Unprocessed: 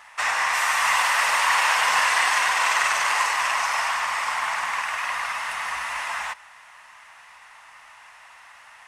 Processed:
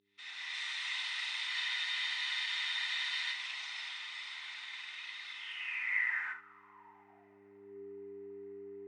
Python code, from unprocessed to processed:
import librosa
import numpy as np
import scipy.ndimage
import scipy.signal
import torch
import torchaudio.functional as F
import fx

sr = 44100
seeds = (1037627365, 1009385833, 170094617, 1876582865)

y = fx.fade_in_head(x, sr, length_s=0.53)
y = scipy.signal.sosfilt(scipy.signal.ellip(4, 1.0, 40, 9400.0, 'lowpass', fs=sr, output='sos'), y)
y = fx.peak_eq(y, sr, hz=2100.0, db=8.0, octaves=0.46)
y = fx.notch_comb(y, sr, f0_hz=560.0)
y = fx.room_early_taps(y, sr, ms=(38, 69), db=(-9.0, -12.0))
y = fx.dmg_buzz(y, sr, base_hz=100.0, harmonics=4, level_db=-39.0, tilt_db=-1, odd_only=False)
y = fx.filter_sweep_bandpass(y, sr, from_hz=3700.0, to_hz=390.0, start_s=5.32, end_s=7.83, q=7.8)
y = fx.spec_freeze(y, sr, seeds[0], at_s=1.52, hold_s=1.81)
y = F.gain(torch.from_numpy(y), -1.5).numpy()